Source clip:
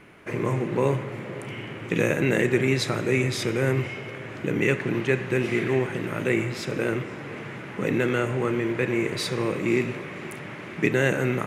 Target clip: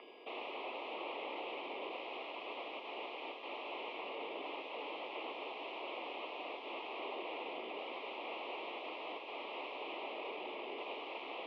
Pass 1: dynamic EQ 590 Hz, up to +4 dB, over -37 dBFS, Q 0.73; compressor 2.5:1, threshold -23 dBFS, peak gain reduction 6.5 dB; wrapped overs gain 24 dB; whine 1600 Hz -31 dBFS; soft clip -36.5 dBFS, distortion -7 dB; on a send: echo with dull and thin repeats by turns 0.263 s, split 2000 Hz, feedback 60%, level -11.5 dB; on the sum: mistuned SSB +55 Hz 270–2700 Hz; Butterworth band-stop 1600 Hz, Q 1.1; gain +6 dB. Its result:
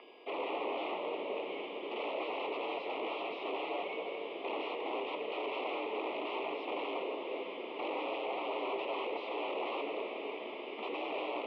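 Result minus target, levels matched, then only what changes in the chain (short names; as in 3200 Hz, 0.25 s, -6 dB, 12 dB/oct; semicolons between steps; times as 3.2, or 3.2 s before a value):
wrapped overs: distortion -17 dB
change: wrapped overs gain 31.5 dB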